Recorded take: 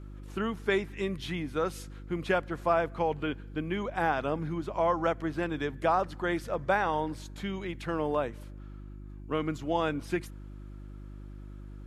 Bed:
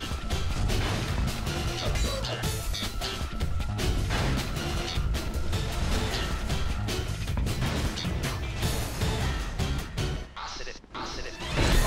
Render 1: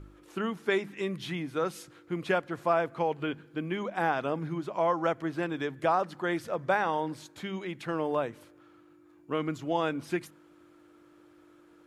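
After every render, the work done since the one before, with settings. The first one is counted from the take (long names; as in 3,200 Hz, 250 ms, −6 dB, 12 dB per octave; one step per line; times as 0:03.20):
hum removal 50 Hz, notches 5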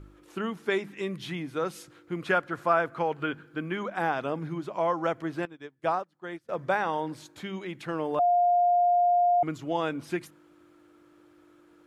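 0:02.20–0:03.98: parametric band 1,400 Hz +7.5 dB 0.64 octaves
0:05.45–0:06.49: expander for the loud parts 2.5 to 1, over −41 dBFS
0:08.19–0:09.43: beep over 706 Hz −19 dBFS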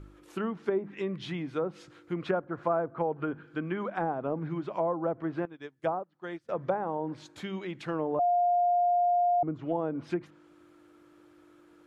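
treble cut that deepens with the level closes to 760 Hz, closed at −24.5 dBFS
dynamic equaliser 2,100 Hz, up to −3 dB, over −44 dBFS, Q 0.99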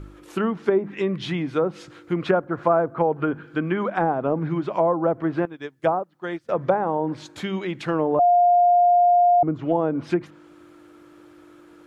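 level +9 dB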